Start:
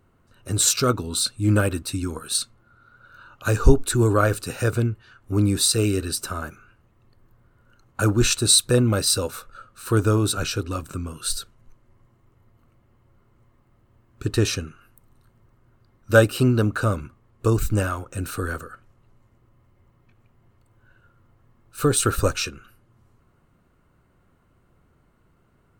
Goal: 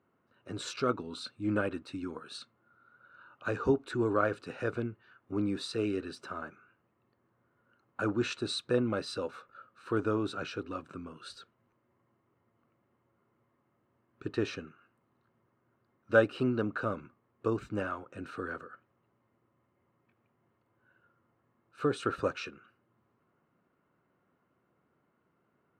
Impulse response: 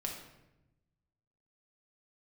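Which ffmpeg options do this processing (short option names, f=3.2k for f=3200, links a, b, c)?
-af "highpass=200,lowpass=2.6k,volume=-8dB"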